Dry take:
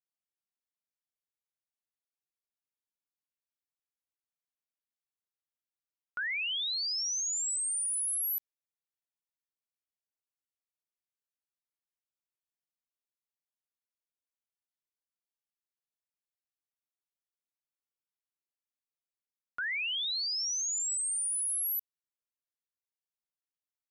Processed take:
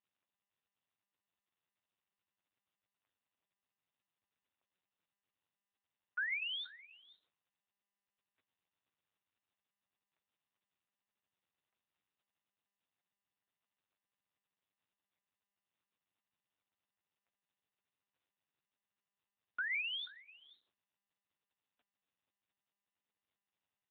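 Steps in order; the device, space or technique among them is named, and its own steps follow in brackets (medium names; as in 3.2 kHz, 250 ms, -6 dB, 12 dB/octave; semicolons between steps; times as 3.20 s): satellite phone (band-pass 360–3100 Hz; delay 483 ms -19.5 dB; AMR-NB 6.7 kbps 8 kHz)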